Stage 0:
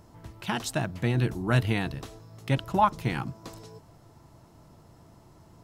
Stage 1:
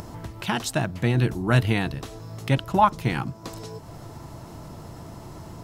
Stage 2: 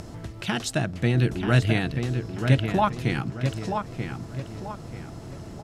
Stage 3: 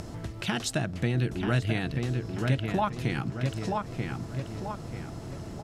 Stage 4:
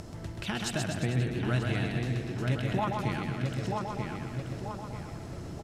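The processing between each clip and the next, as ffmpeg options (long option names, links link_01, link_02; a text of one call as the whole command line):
ffmpeg -i in.wav -af "acompressor=mode=upward:threshold=-33dB:ratio=2.5,volume=4dB" out.wav
ffmpeg -i in.wav -filter_complex "[0:a]lowpass=9900,equalizer=frequency=960:width_type=o:width=0.51:gain=-8.5,asplit=2[link_01][link_02];[link_02]adelay=935,lowpass=frequency=3000:poles=1,volume=-6dB,asplit=2[link_03][link_04];[link_04]adelay=935,lowpass=frequency=3000:poles=1,volume=0.38,asplit=2[link_05][link_06];[link_06]adelay=935,lowpass=frequency=3000:poles=1,volume=0.38,asplit=2[link_07][link_08];[link_08]adelay=935,lowpass=frequency=3000:poles=1,volume=0.38,asplit=2[link_09][link_10];[link_10]adelay=935,lowpass=frequency=3000:poles=1,volume=0.38[link_11];[link_01][link_03][link_05][link_07][link_09][link_11]amix=inputs=6:normalize=0" out.wav
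ffmpeg -i in.wav -af "acompressor=threshold=-27dB:ratio=2" out.wav
ffmpeg -i in.wav -af "aecho=1:1:130|247|352.3|447.1|532.4:0.631|0.398|0.251|0.158|0.1,volume=-4dB" out.wav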